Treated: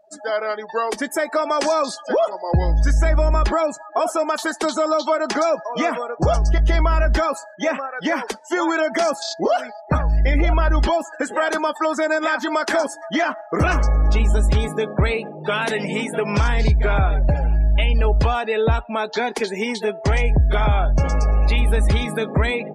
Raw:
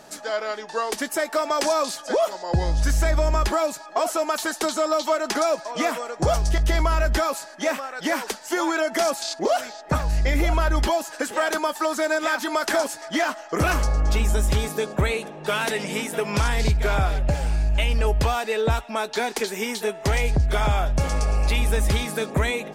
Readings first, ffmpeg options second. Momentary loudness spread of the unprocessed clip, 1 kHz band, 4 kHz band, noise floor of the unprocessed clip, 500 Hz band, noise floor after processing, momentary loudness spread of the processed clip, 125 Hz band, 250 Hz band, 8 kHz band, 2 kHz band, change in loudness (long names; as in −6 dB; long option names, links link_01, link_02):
5 LU, +3.0 dB, 0.0 dB, −40 dBFS, +3.0 dB, −39 dBFS, 5 LU, +4.5 dB, +4.0 dB, −3.5 dB, +2.5 dB, +3.0 dB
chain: -filter_complex "[0:a]afftdn=noise_reduction=35:noise_floor=-35,bass=frequency=250:gain=2,treble=frequency=4000:gain=-3,asplit=2[link_01][link_02];[link_02]alimiter=limit=-19.5dB:level=0:latency=1,volume=-3dB[link_03];[link_01][link_03]amix=inputs=2:normalize=0"